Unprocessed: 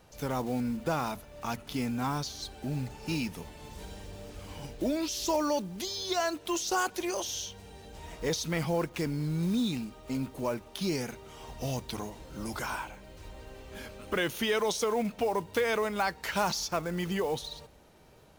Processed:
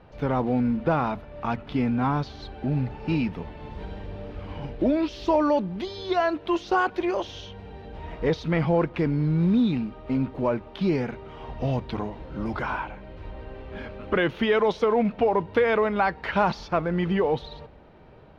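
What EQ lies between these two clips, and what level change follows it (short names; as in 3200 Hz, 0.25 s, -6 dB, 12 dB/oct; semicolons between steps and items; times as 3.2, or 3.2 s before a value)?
air absorption 360 m; high shelf 7300 Hz -8 dB; +8.5 dB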